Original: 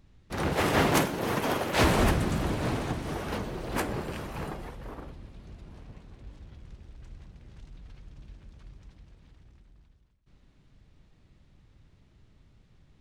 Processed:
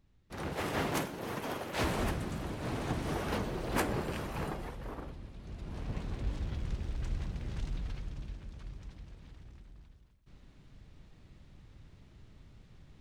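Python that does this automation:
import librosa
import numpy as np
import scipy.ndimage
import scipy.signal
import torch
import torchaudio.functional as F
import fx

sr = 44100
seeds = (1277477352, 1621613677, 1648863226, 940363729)

y = fx.gain(x, sr, db=fx.line((2.58, -9.5), (2.99, -1.0), (5.38, -1.0), (6.0, 11.0), (7.72, 11.0), (8.41, 3.5)))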